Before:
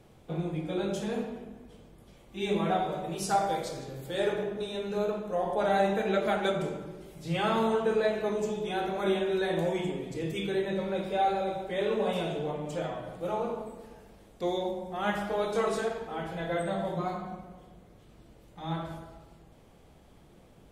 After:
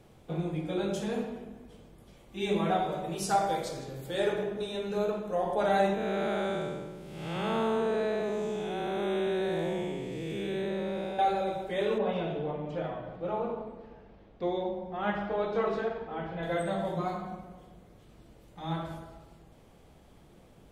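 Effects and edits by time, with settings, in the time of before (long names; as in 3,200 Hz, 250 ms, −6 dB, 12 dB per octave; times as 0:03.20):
0:05.94–0:11.19: spectrum smeared in time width 305 ms
0:11.98–0:16.43: high-frequency loss of the air 260 metres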